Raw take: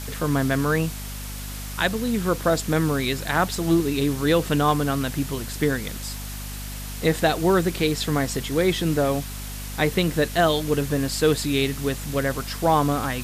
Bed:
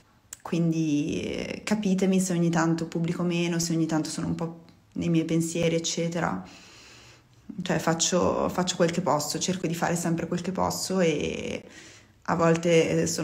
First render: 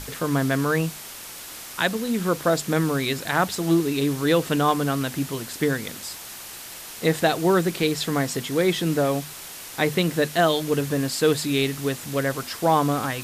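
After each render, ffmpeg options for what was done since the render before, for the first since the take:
-af "bandreject=f=50:t=h:w=6,bandreject=f=100:t=h:w=6,bandreject=f=150:t=h:w=6,bandreject=f=200:t=h:w=6,bandreject=f=250:t=h:w=6"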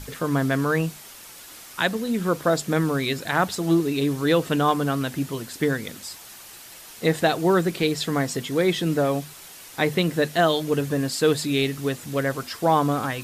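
-af "afftdn=nr=6:nf=-39"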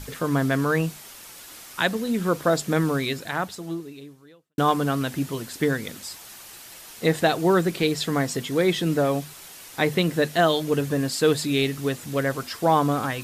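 -filter_complex "[0:a]asplit=2[a][b];[a]atrim=end=4.58,asetpts=PTS-STARTPTS,afade=t=out:st=2.94:d=1.64:c=qua[c];[b]atrim=start=4.58,asetpts=PTS-STARTPTS,afade=t=in:d=0.004:c=hsin[d];[c][d]concat=n=2:v=0:a=1"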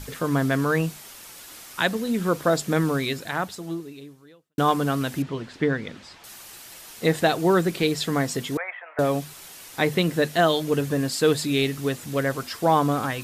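-filter_complex "[0:a]asettb=1/sr,asplit=3[a][b][c];[a]atrim=end=5.224[d];[b]atrim=start=5.22:end=6.24,asetpts=PTS-STARTPTS,afade=t=in:d=0.004:c=qsin,afade=t=out:st=1.016:d=0.004:c=qsin,lowpass=3.2k[e];[c]atrim=start=6.236[f];[d][e]acrossfade=d=0.004:c1=hsin:c2=qsin[g];[g][f]acrossfade=d=0.004:c1=qsin:c2=hsin,asettb=1/sr,asplit=3[h][i][j];[h]atrim=end=8.574[k];[i]atrim=start=8.57:end=8.99,asetpts=PTS-STARTPTS,afade=t=in:d=0.004:c=qsin,afade=t=out:st=0.416:d=0.004:c=qsin,asuperpass=centerf=1200:order=12:qfactor=0.71[l];[j]atrim=start=8.986[m];[k][l]acrossfade=d=0.004:c1=hsin:c2=qsin[n];[n][m]acrossfade=d=0.004:c1=qsin:c2=hsin"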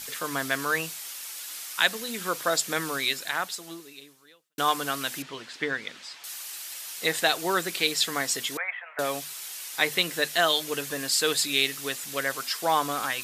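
-af "highpass=f=540:p=1,tiltshelf=f=1.3k:g=-6"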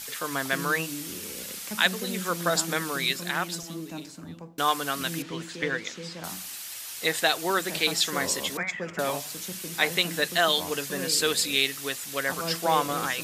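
-filter_complex "[1:a]volume=-12.5dB[a];[0:a][a]amix=inputs=2:normalize=0"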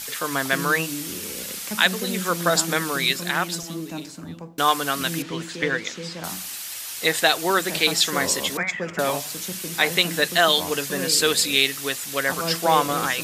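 -af "volume=5dB,alimiter=limit=-3dB:level=0:latency=1"

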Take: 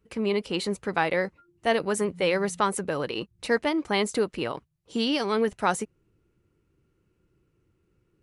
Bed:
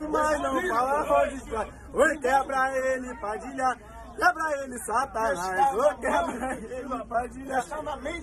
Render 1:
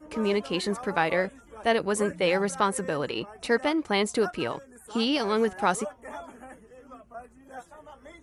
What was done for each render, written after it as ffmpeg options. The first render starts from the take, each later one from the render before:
-filter_complex "[1:a]volume=-15dB[a];[0:a][a]amix=inputs=2:normalize=0"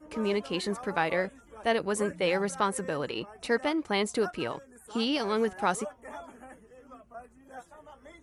-af "volume=-3dB"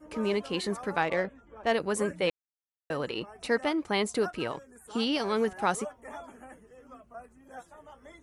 -filter_complex "[0:a]asettb=1/sr,asplit=3[a][b][c];[a]atrim=end=1.024[d];[b]atrim=start=1.02:end=1.72,asetpts=PTS-STARTPTS,afade=t=in:d=0.004:c=qsin,afade=t=out:st=0.696:d=0.004:c=qsin,adynamicsmooth=sensitivity=2.5:basefreq=2.9k[e];[c]atrim=start=1.716[f];[d][e]acrossfade=d=0.004:c1=hsin:c2=qsin[g];[g][f]acrossfade=d=0.004:c1=qsin:c2=hsin,asplit=3[h][i][j];[h]atrim=end=2.3,asetpts=PTS-STARTPTS,afade=t=out:st=2.296:d=0.004:c=hsin[k];[i]atrim=start=2.3:end=2.9,asetpts=PTS-STARTPTS,volume=0[l];[j]atrim=start=2.9,asetpts=PTS-STARTPTS,afade=t=in:d=0.004:c=hsin[m];[k][l][m]concat=n=3:v=0:a=1"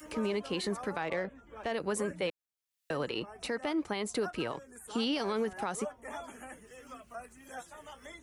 -filter_complex "[0:a]acrossover=split=280|1900[a][b][c];[c]acompressor=mode=upward:threshold=-44dB:ratio=2.5[d];[a][b][d]amix=inputs=3:normalize=0,alimiter=limit=-23.5dB:level=0:latency=1:release=136"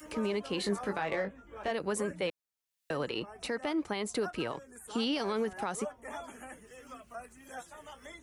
-filter_complex "[0:a]asettb=1/sr,asplit=3[a][b][c];[a]atrim=end=0.564[d];[b]atrim=start=0.56:end=1.71,asetpts=PTS-STARTPTS,afade=t=in:d=0.004:c=qsin,afade=t=out:st=1.146:d=0.004:c=qsin,asplit=2[e][f];[f]adelay=20,volume=-5.5dB[g];[e][g]amix=inputs=2:normalize=0,atrim=end_sample=50715[h];[c]atrim=start=1.706[i];[d][h]acrossfade=d=0.004:c1=hsin:c2=qsin[j];[j][i]acrossfade=d=0.004:c1=qsin:c2=hsin"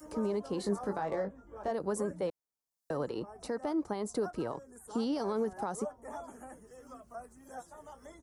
-af "firequalizer=gain_entry='entry(890,0);entry(2500,-18);entry(5100,-4)':delay=0.05:min_phase=1"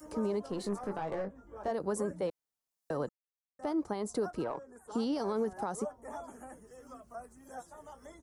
-filter_complex "[0:a]asettb=1/sr,asplit=3[a][b][c];[a]atrim=end=0.464[d];[b]atrim=start=0.46:end=1.36,asetpts=PTS-STARTPTS,afade=t=in:d=0.004:c=qsin,afade=t=out:st=0.896:d=0.004:c=qsin,aeval=exprs='(tanh(25.1*val(0)+0.4)-tanh(0.4))/25.1':c=same[e];[c]atrim=start=1.356[f];[d][e]acrossfade=d=0.004:c1=hsin:c2=qsin[g];[g][f]acrossfade=d=0.004:c1=qsin:c2=hsin,asettb=1/sr,asplit=3[h][i][j];[h]atrim=end=4.444[k];[i]atrim=start=4.44:end=4.92,asetpts=PTS-STARTPTS,afade=t=in:d=0.004:c=qsin,afade=t=out:st=0.476:d=0.004:c=qsin,asplit=2[l][m];[m]highpass=f=720:p=1,volume=12dB,asoftclip=type=tanh:threshold=-24.5dB[n];[l][n]amix=inputs=2:normalize=0,lowpass=f=1.2k:p=1,volume=-6dB[o];[j]atrim=start=4.916[p];[k][o]acrossfade=d=0.004:c1=hsin:c2=qsin[q];[q][p]acrossfade=d=0.004:c1=qsin:c2=hsin,asplit=3[r][s][t];[r]atrim=end=3.09,asetpts=PTS-STARTPTS,afade=t=out:st=3.086:d=0.004:c=hsin[u];[s]atrim=start=3.09:end=3.59,asetpts=PTS-STARTPTS,volume=0[v];[t]atrim=start=3.59,asetpts=PTS-STARTPTS,afade=t=in:d=0.004:c=hsin[w];[u][v][w]concat=n=3:v=0:a=1"

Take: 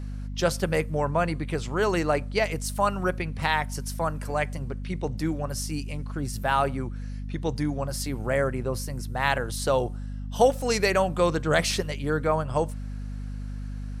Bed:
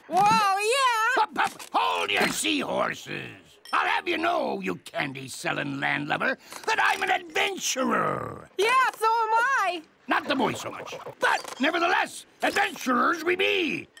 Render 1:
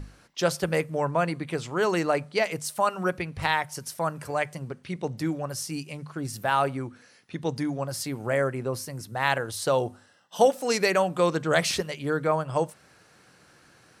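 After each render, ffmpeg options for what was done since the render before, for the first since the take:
-af "bandreject=f=50:t=h:w=6,bandreject=f=100:t=h:w=6,bandreject=f=150:t=h:w=6,bandreject=f=200:t=h:w=6,bandreject=f=250:t=h:w=6"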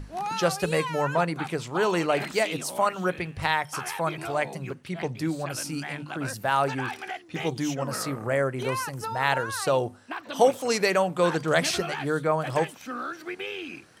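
-filter_complex "[1:a]volume=-11dB[a];[0:a][a]amix=inputs=2:normalize=0"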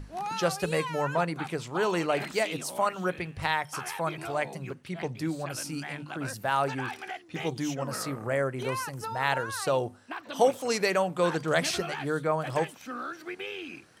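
-af "volume=-3dB"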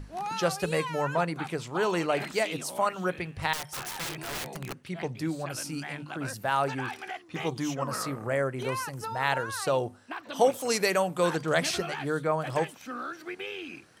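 -filter_complex "[0:a]asettb=1/sr,asplit=3[a][b][c];[a]atrim=end=3.534[d];[b]atrim=start=3.53:end=4.88,asetpts=PTS-STARTPTS,afade=t=in:d=0.004:c=qsin,afade=t=out:st=1.346:d=0.004:c=qsin,aeval=exprs='(mod(29.9*val(0)+1,2)-1)/29.9':c=same[e];[c]atrim=start=4.876[f];[d][e]acrossfade=d=0.004:c1=hsin:c2=qsin[g];[g][f]acrossfade=d=0.004:c1=qsin:c2=hsin,asettb=1/sr,asplit=3[h][i][j];[h]atrim=end=7.144[k];[i]atrim=start=7.14:end=8.07,asetpts=PTS-STARTPTS,afade=t=in:d=0.004:c=qsin,afade=t=out:st=0.926:d=0.004:c=qsin,equalizer=f=1.1k:t=o:w=0.41:g=8[l];[j]atrim=start=8.066[m];[k][l]acrossfade=d=0.004:c1=hsin:c2=qsin[n];[n][m]acrossfade=d=0.004:c1=qsin:c2=hsin,asettb=1/sr,asplit=3[o][p][q];[o]atrim=end=10.544[r];[p]atrim=start=10.54:end=11.36,asetpts=PTS-STARTPTS,afade=t=in:d=0.004:c=qsin,afade=t=out:st=0.816:d=0.004:c=qsin,equalizer=f=13k:t=o:w=1.3:g=8.5[s];[q]atrim=start=11.356[t];[r][s]acrossfade=d=0.004:c1=hsin:c2=qsin[u];[u][t]acrossfade=d=0.004:c1=qsin:c2=hsin"

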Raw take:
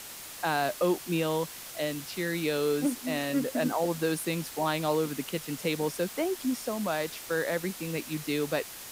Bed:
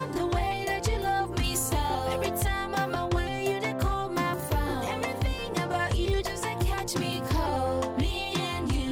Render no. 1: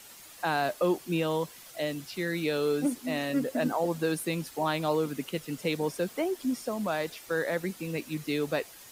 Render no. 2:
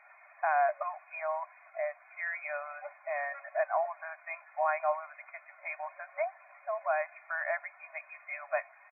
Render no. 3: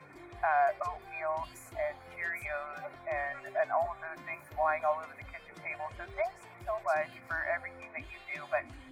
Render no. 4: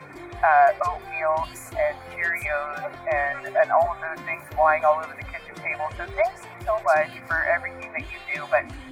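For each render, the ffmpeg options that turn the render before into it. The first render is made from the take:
-af "afftdn=nr=9:nf=-44"
-af "afftfilt=real='re*between(b*sr/4096,570,2500)':imag='im*between(b*sr/4096,570,2500)':win_size=4096:overlap=0.75,aecho=1:1:2.8:0.52"
-filter_complex "[1:a]volume=-23dB[a];[0:a][a]amix=inputs=2:normalize=0"
-af "volume=11dB"

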